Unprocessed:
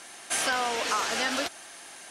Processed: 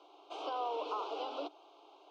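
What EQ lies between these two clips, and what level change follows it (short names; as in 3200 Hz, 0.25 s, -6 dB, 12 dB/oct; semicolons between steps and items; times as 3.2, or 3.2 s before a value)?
rippled Chebyshev high-pass 290 Hz, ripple 6 dB; Butterworth band-stop 1800 Hz, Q 0.69; LPF 3000 Hz 24 dB/oct; -1.0 dB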